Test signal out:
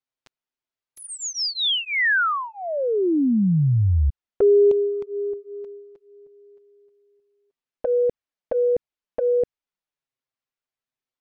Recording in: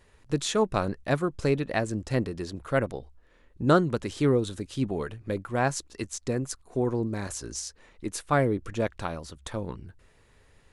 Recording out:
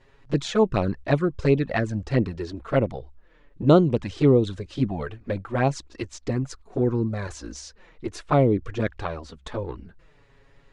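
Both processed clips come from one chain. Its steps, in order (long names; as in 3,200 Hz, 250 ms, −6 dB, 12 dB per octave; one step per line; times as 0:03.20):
flanger swept by the level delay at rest 7.7 ms, full sweep at −20 dBFS
high-frequency loss of the air 120 metres
level +6.5 dB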